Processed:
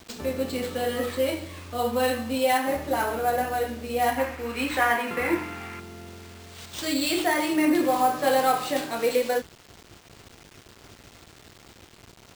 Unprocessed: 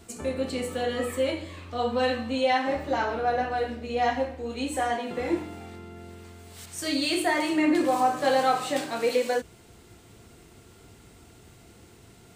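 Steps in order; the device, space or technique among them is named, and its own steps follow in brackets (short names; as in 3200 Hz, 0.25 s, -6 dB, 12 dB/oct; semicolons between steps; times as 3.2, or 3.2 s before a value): early 8-bit sampler (sample-rate reducer 12000 Hz, jitter 0%; bit-crush 8-bit); 4.18–5.8 band shelf 1600 Hz +10 dB; gain +1 dB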